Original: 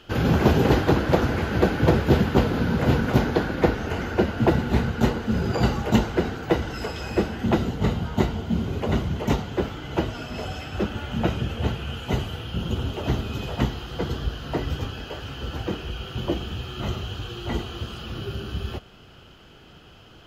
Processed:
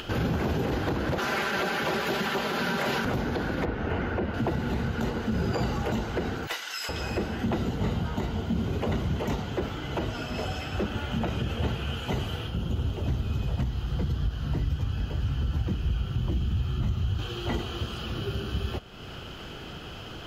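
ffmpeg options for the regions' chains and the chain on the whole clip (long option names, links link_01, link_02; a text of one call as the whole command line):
ffmpeg -i in.wav -filter_complex "[0:a]asettb=1/sr,asplit=3[link_01][link_02][link_03];[link_01]atrim=end=1.184[link_04];[link_02]atrim=start=1.18:end=3.05,asetpts=PTS-STARTPTS,afade=type=in:duration=0.004:curve=qsin,afade=type=out:start_time=1.866:duration=0.004:curve=qsin,highpass=frequency=1100:poles=1,aecho=1:1:5.1:0.55,atrim=end_sample=82467,acontrast=85[link_05];[link_03]atrim=start=3.046[link_06];[link_04][link_05]acrossfade=duration=0.004:curve1=hsin:curve2=qsin[link_07];[link_07][link_06]acrossfade=duration=0.004:curve1=qsin:curve2=hsin,asettb=1/sr,asplit=3[link_08][link_09][link_10];[link_08]atrim=end=3.654[link_11];[link_09]atrim=start=3.65:end=4.34,asetpts=PTS-STARTPTS,afade=type=in:duration=0.004:curve=qsin,afade=type=out:start_time=0.686:duration=0.004:curve=qsin,acrossover=split=3800[link_12][link_13];[link_13]acompressor=threshold=-58dB:ratio=4:attack=1:release=60[link_14];[link_12][link_14]amix=inputs=2:normalize=0,equalizer=frequency=8600:width_type=o:width=2.2:gain=-6.5[link_15];[link_10]atrim=start=4.336[link_16];[link_11][link_15]acrossfade=duration=0.004:curve1=hsin:curve2=qsin[link_17];[link_17][link_16]acrossfade=duration=0.004:curve1=qsin:curve2=hsin,asettb=1/sr,asplit=3[link_18][link_19][link_20];[link_18]atrim=end=6.474[link_21];[link_19]atrim=start=6.47:end=6.89,asetpts=PTS-STARTPTS,afade=type=in:duration=0.004:curve=qsin,afade=type=out:start_time=0.416:duration=0.004:curve=qsin,highpass=1500,highshelf=frequency=3800:gain=8,asoftclip=type=hard:threshold=-25.5dB[link_22];[link_20]atrim=start=6.886[link_23];[link_21][link_22]acrossfade=duration=0.004:curve1=hsin:curve2=qsin[link_24];[link_24][link_23]acrossfade=duration=0.004:curve1=qsin:curve2=hsin,asettb=1/sr,asplit=3[link_25][link_26][link_27];[link_25]atrim=end=12.474[link_28];[link_26]atrim=start=12.47:end=17.19,asetpts=PTS-STARTPTS,afade=type=in:duration=0.004:curve=qsin,afade=type=out:start_time=4.716:duration=0.004:curve=qsin,volume=17.5dB,asoftclip=hard,volume=-17.5dB,asubboost=boost=8.5:cutoff=170,acrossover=split=91|430|1600|4400[link_29][link_30][link_31][link_32][link_33];[link_29]acompressor=threshold=-30dB:ratio=3[link_34];[link_30]acompressor=threshold=-30dB:ratio=3[link_35];[link_31]acompressor=threshold=-47dB:ratio=3[link_36];[link_32]acompressor=threshold=-52dB:ratio=3[link_37];[link_33]acompressor=threshold=-58dB:ratio=3[link_38];[link_34][link_35][link_36][link_37][link_38]amix=inputs=5:normalize=0[link_39];[link_27]atrim=start=17.186[link_40];[link_28][link_39]acrossfade=duration=0.004:curve1=hsin:curve2=qsin[link_41];[link_41][link_40]acrossfade=duration=0.004:curve1=qsin:curve2=hsin,acompressor=threshold=-21dB:ratio=6,alimiter=limit=-19dB:level=0:latency=1:release=36,acompressor=mode=upward:threshold=-30dB:ratio=2.5" out.wav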